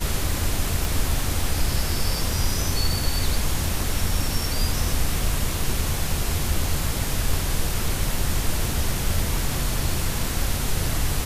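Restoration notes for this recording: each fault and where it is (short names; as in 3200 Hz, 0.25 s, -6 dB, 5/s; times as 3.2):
0.85 pop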